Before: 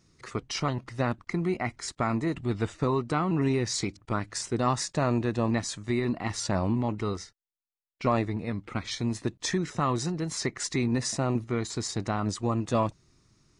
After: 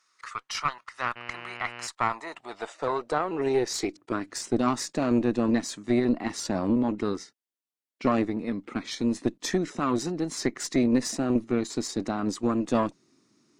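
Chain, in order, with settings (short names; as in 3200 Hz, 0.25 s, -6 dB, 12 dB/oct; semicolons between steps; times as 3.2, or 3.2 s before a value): high-pass sweep 1200 Hz -> 260 Hz, 1.6–4.42; 1.15–1.86 buzz 120 Hz, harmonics 25, -41 dBFS 0 dB/oct; added harmonics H 4 -17 dB, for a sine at -8.5 dBFS; gain -1 dB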